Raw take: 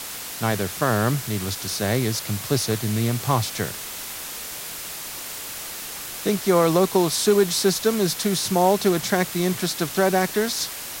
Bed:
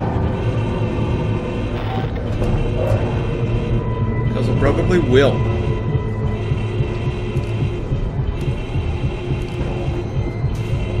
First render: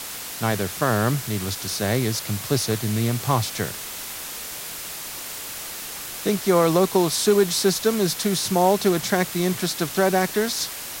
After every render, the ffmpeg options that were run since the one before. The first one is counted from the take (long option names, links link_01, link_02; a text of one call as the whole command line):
ffmpeg -i in.wav -af anull out.wav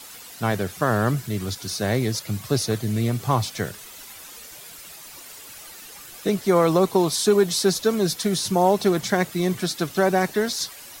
ffmpeg -i in.wav -af "afftdn=noise_reduction=11:noise_floor=-34" out.wav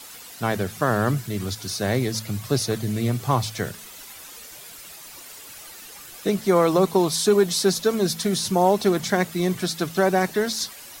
ffmpeg -i in.wav -af "bandreject=frequency=54.79:width_type=h:width=4,bandreject=frequency=109.58:width_type=h:width=4,bandreject=frequency=164.37:width_type=h:width=4,bandreject=frequency=219.16:width_type=h:width=4" out.wav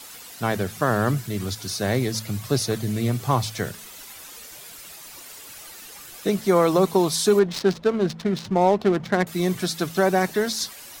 ffmpeg -i in.wav -filter_complex "[0:a]asettb=1/sr,asplit=3[link_01][link_02][link_03];[link_01]atrim=end=7.394[link_04];[link_02]atrim=start=7.39:end=9.27,asetpts=PTS-STARTPTS,afade=type=in:duration=0.004:curve=qsin,afade=type=out:start_time=1.876:duration=0.004:curve=qsin,adynamicsmooth=sensitivity=2.5:basefreq=760[link_05];[link_03]atrim=start=9.266[link_06];[link_04][link_05]acrossfade=duration=0.004:curve1=hsin:curve2=qsin[link_07];[link_07][link_06]acrossfade=duration=0.004:curve1=qsin:curve2=hsin" out.wav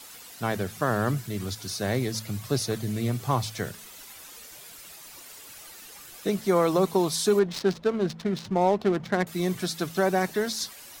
ffmpeg -i in.wav -af "volume=-4dB" out.wav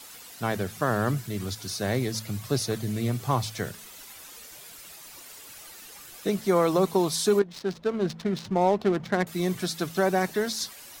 ffmpeg -i in.wav -filter_complex "[0:a]asplit=2[link_01][link_02];[link_01]atrim=end=7.42,asetpts=PTS-STARTPTS,afade=type=out:start_time=7.416:duration=0.004:curve=hsin:silence=0.237137[link_03];[link_02]atrim=start=7.42,asetpts=PTS-STARTPTS,afade=type=in:duration=0.65:silence=0.237137[link_04];[link_03][link_04]concat=n=2:v=0:a=1" out.wav